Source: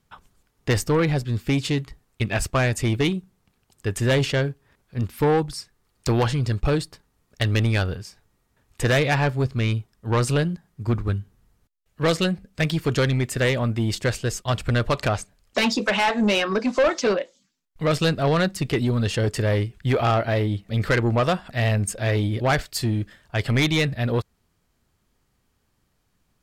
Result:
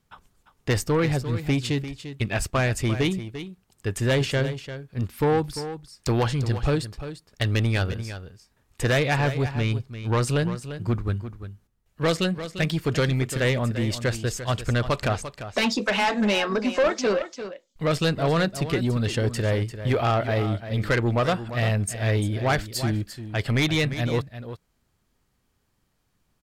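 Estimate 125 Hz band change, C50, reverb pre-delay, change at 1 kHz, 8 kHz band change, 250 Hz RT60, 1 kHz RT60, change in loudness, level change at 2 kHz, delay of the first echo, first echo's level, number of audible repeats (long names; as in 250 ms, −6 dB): −1.5 dB, no reverb audible, no reverb audible, −1.5 dB, −1.5 dB, no reverb audible, no reverb audible, −2.0 dB, −1.5 dB, 346 ms, −11.5 dB, 1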